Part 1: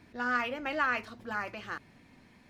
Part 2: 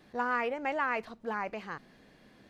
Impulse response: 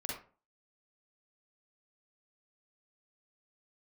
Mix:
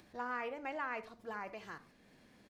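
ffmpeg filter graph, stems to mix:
-filter_complex "[0:a]agate=range=-8dB:threshold=-53dB:ratio=16:detection=peak,bass=frequency=250:gain=-1,treble=frequency=4000:gain=10,acompressor=threshold=-38dB:ratio=6,volume=-5.5dB[link_01];[1:a]volume=-1,adelay=0.7,volume=-10dB,asplit=3[link_02][link_03][link_04];[link_03]volume=-12.5dB[link_05];[link_04]apad=whole_len=109861[link_06];[link_01][link_06]sidechaincompress=threshold=-47dB:ratio=8:attack=5.6:release=833[link_07];[2:a]atrim=start_sample=2205[link_08];[link_05][link_08]afir=irnorm=-1:irlink=0[link_09];[link_07][link_02][link_09]amix=inputs=3:normalize=0,acompressor=mode=upward:threshold=-58dB:ratio=2.5"

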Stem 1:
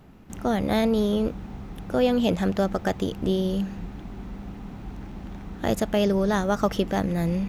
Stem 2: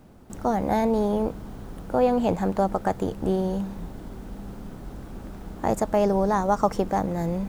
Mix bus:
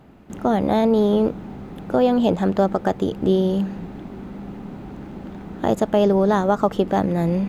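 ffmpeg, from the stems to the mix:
ffmpeg -i stem1.wav -i stem2.wav -filter_complex "[0:a]highpass=frequency=140:poles=1,bandreject=frequency=5600:width=14,alimiter=limit=-15.5dB:level=0:latency=1:release=403,volume=3dB[link_01];[1:a]equalizer=frequency=410:width=0.66:gain=7,bandreject=frequency=480:width=13,volume=-6dB[link_02];[link_01][link_02]amix=inputs=2:normalize=0,highshelf=frequency=4500:gain=-7.5" out.wav

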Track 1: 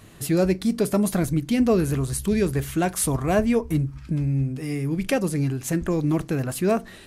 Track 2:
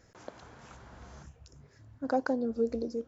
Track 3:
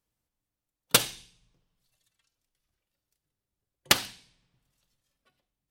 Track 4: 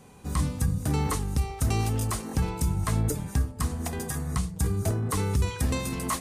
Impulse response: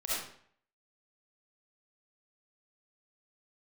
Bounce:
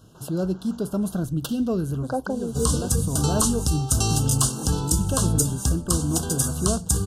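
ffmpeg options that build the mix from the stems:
-filter_complex "[0:a]equalizer=frequency=150:width=0.7:gain=6,volume=-8dB[link_01];[1:a]volume=2dB,asplit=2[link_02][link_03];[2:a]adelay=500,volume=-13.5dB[link_04];[3:a]equalizer=frequency=7100:width=0.58:gain=12.5,adelay=2300,volume=2dB[link_05];[link_03]apad=whole_len=311532[link_06];[link_01][link_06]sidechaincompress=threshold=-34dB:ratio=3:attack=7.2:release=248[link_07];[link_07][link_02][link_04][link_05]amix=inputs=4:normalize=0,asuperstop=centerf=2100:order=20:qfactor=1.9"

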